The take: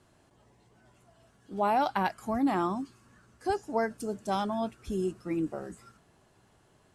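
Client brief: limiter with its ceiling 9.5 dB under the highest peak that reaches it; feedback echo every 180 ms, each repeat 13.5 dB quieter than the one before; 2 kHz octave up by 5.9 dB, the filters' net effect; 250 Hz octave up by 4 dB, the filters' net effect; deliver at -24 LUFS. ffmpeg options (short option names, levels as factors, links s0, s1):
-af "equalizer=f=250:t=o:g=5,equalizer=f=2000:t=o:g=8,alimiter=limit=0.1:level=0:latency=1,aecho=1:1:180|360:0.211|0.0444,volume=2.24"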